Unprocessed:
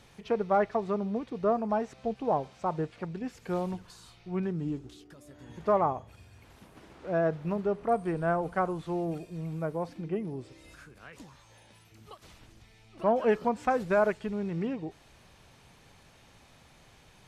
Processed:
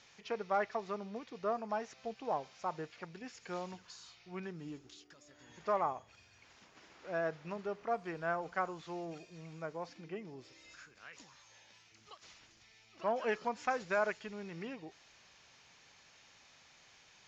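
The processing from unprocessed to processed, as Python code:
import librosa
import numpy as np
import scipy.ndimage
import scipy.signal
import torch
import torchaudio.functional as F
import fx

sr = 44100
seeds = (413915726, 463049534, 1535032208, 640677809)

y = scipy.signal.sosfilt(scipy.signal.cheby1(6, 3, 7100.0, 'lowpass', fs=sr, output='sos'), x)
y = fx.tilt_eq(y, sr, slope=3.0)
y = y * 10.0 ** (-4.0 / 20.0)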